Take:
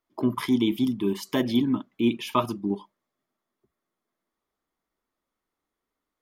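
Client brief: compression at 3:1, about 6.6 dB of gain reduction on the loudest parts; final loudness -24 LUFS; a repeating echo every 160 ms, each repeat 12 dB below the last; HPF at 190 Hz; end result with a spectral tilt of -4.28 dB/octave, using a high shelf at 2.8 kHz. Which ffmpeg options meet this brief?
-af "highpass=190,highshelf=f=2800:g=7.5,acompressor=threshold=0.0447:ratio=3,aecho=1:1:160|320|480:0.251|0.0628|0.0157,volume=2.24"

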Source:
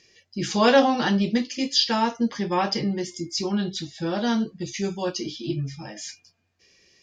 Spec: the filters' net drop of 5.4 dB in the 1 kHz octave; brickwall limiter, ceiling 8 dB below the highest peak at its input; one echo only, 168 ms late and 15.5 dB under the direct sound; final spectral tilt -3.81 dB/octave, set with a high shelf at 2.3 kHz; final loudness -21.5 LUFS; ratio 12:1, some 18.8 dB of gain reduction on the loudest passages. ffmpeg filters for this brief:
-af "equalizer=f=1000:t=o:g=-8.5,highshelf=f=2300:g=7,acompressor=threshold=0.0355:ratio=12,alimiter=level_in=1.26:limit=0.0631:level=0:latency=1,volume=0.794,aecho=1:1:168:0.168,volume=4.73"

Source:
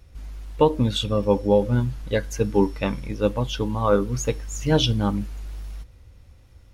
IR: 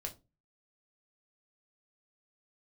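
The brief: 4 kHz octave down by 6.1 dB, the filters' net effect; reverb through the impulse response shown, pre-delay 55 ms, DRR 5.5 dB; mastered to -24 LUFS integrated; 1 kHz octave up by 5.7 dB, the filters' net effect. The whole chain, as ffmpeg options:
-filter_complex "[0:a]equalizer=f=1000:t=o:g=7,equalizer=f=4000:t=o:g=-8.5,asplit=2[s0][s1];[1:a]atrim=start_sample=2205,adelay=55[s2];[s1][s2]afir=irnorm=-1:irlink=0,volume=0.631[s3];[s0][s3]amix=inputs=2:normalize=0,volume=0.668"

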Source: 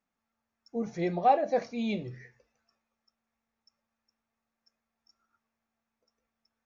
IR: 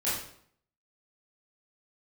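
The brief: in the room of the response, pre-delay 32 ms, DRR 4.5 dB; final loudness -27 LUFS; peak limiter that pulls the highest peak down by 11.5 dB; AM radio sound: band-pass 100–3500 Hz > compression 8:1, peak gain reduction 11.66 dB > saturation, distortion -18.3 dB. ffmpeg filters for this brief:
-filter_complex "[0:a]alimiter=limit=0.0668:level=0:latency=1,asplit=2[s0][s1];[1:a]atrim=start_sample=2205,adelay=32[s2];[s1][s2]afir=irnorm=-1:irlink=0,volume=0.224[s3];[s0][s3]amix=inputs=2:normalize=0,highpass=100,lowpass=3500,acompressor=threshold=0.0141:ratio=8,asoftclip=threshold=0.0188,volume=6.68"

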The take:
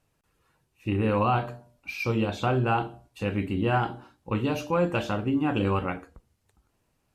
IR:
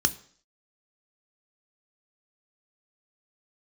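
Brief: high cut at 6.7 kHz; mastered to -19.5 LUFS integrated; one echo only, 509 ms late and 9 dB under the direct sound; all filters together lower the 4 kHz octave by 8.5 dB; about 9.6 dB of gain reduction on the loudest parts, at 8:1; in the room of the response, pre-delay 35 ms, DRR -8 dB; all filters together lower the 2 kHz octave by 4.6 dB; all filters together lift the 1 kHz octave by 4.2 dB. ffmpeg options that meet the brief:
-filter_complex "[0:a]lowpass=6700,equalizer=f=1000:t=o:g=8,equalizer=f=2000:t=o:g=-8.5,equalizer=f=4000:t=o:g=-8.5,acompressor=threshold=0.0447:ratio=8,aecho=1:1:509:0.355,asplit=2[s0][s1];[1:a]atrim=start_sample=2205,adelay=35[s2];[s1][s2]afir=irnorm=-1:irlink=0,volume=0.841[s3];[s0][s3]amix=inputs=2:normalize=0,volume=1.26"

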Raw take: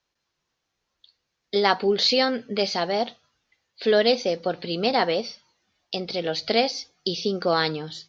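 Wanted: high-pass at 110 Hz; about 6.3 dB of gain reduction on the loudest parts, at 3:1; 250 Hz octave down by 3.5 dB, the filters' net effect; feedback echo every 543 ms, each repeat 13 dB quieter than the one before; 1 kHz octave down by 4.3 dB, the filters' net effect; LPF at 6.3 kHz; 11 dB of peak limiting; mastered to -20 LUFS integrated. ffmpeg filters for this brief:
-af "highpass=110,lowpass=6300,equalizer=f=250:t=o:g=-4,equalizer=f=1000:t=o:g=-6,acompressor=threshold=0.0501:ratio=3,alimiter=limit=0.0841:level=0:latency=1,aecho=1:1:543|1086|1629:0.224|0.0493|0.0108,volume=4.22"

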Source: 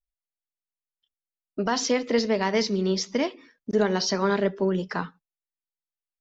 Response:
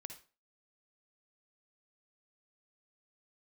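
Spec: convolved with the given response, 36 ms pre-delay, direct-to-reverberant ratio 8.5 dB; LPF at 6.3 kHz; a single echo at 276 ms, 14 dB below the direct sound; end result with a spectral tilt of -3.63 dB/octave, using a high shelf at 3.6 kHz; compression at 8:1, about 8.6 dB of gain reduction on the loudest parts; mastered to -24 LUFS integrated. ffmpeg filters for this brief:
-filter_complex "[0:a]lowpass=6300,highshelf=f=3600:g=9,acompressor=threshold=0.0501:ratio=8,aecho=1:1:276:0.2,asplit=2[s0][s1];[1:a]atrim=start_sample=2205,adelay=36[s2];[s1][s2]afir=irnorm=-1:irlink=0,volume=0.668[s3];[s0][s3]amix=inputs=2:normalize=0,volume=2.11"

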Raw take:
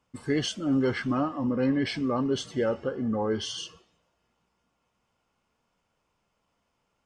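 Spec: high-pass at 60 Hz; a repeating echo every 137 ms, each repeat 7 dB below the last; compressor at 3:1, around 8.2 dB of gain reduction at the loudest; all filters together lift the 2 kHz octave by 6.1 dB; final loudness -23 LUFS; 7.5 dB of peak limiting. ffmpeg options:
-af "highpass=60,equalizer=f=2000:t=o:g=7.5,acompressor=threshold=0.0251:ratio=3,alimiter=level_in=1.5:limit=0.0631:level=0:latency=1,volume=0.668,aecho=1:1:137|274|411|548|685:0.447|0.201|0.0905|0.0407|0.0183,volume=4.22"

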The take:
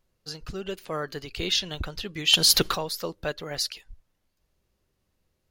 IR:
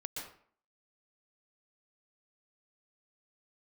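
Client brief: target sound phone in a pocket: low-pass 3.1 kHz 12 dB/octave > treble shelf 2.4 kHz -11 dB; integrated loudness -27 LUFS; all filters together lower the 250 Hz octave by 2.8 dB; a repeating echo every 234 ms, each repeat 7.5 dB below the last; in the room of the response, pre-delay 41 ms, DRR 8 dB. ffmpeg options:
-filter_complex "[0:a]equalizer=f=250:t=o:g=-4.5,aecho=1:1:234|468|702|936|1170:0.422|0.177|0.0744|0.0312|0.0131,asplit=2[s0][s1];[1:a]atrim=start_sample=2205,adelay=41[s2];[s1][s2]afir=irnorm=-1:irlink=0,volume=0.422[s3];[s0][s3]amix=inputs=2:normalize=0,lowpass=3100,highshelf=f=2400:g=-11,volume=2"

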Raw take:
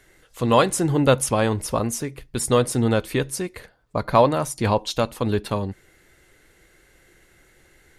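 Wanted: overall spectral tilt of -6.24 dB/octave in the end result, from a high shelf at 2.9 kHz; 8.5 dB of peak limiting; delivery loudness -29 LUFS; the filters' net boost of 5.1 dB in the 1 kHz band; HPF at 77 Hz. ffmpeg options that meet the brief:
-af "highpass=77,equalizer=f=1000:t=o:g=7,highshelf=f=2900:g=-8.5,volume=0.531,alimiter=limit=0.2:level=0:latency=1"

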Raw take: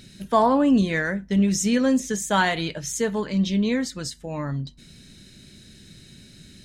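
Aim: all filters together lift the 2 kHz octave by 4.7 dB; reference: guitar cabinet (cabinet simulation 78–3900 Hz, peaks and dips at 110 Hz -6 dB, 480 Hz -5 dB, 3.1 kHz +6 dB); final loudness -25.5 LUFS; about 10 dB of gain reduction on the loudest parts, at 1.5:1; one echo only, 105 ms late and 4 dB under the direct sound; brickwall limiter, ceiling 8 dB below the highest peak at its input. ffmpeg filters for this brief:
-af "equalizer=f=2000:t=o:g=5.5,acompressor=threshold=0.00708:ratio=1.5,alimiter=level_in=1.06:limit=0.0631:level=0:latency=1,volume=0.944,highpass=78,equalizer=f=110:t=q:w=4:g=-6,equalizer=f=480:t=q:w=4:g=-5,equalizer=f=3100:t=q:w=4:g=6,lowpass=f=3900:w=0.5412,lowpass=f=3900:w=1.3066,aecho=1:1:105:0.631,volume=2.24"

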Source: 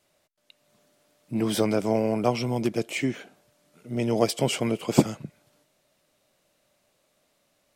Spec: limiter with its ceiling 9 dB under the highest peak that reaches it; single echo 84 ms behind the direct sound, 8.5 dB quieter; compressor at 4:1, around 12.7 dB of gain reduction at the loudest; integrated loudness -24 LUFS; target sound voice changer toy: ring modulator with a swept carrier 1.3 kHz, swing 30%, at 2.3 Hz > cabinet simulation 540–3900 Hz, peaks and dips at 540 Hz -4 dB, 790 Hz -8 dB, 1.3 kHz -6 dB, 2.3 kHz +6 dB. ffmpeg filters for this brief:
-af "acompressor=threshold=0.0398:ratio=4,alimiter=level_in=1.06:limit=0.0631:level=0:latency=1,volume=0.944,aecho=1:1:84:0.376,aeval=exprs='val(0)*sin(2*PI*1300*n/s+1300*0.3/2.3*sin(2*PI*2.3*n/s))':c=same,highpass=540,equalizer=f=540:t=q:w=4:g=-4,equalizer=f=790:t=q:w=4:g=-8,equalizer=f=1300:t=q:w=4:g=-6,equalizer=f=2300:t=q:w=4:g=6,lowpass=f=3900:w=0.5412,lowpass=f=3900:w=1.3066,volume=5.01"

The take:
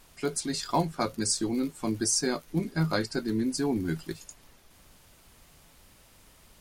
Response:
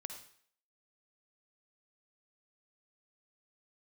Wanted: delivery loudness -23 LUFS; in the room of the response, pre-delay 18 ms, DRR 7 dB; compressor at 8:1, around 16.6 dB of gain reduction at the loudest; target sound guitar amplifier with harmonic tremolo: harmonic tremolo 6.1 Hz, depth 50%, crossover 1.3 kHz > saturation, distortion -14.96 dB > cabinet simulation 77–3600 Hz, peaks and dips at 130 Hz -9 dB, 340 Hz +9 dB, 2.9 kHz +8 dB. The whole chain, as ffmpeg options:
-filter_complex "[0:a]acompressor=threshold=0.01:ratio=8,asplit=2[s0][s1];[1:a]atrim=start_sample=2205,adelay=18[s2];[s1][s2]afir=irnorm=-1:irlink=0,volume=0.631[s3];[s0][s3]amix=inputs=2:normalize=0,acrossover=split=1300[s4][s5];[s4]aeval=exprs='val(0)*(1-0.5/2+0.5/2*cos(2*PI*6.1*n/s))':c=same[s6];[s5]aeval=exprs='val(0)*(1-0.5/2-0.5/2*cos(2*PI*6.1*n/s))':c=same[s7];[s6][s7]amix=inputs=2:normalize=0,asoftclip=threshold=0.0126,highpass=77,equalizer=f=130:t=q:w=4:g=-9,equalizer=f=340:t=q:w=4:g=9,equalizer=f=2900:t=q:w=4:g=8,lowpass=f=3600:w=0.5412,lowpass=f=3600:w=1.3066,volume=12.6"

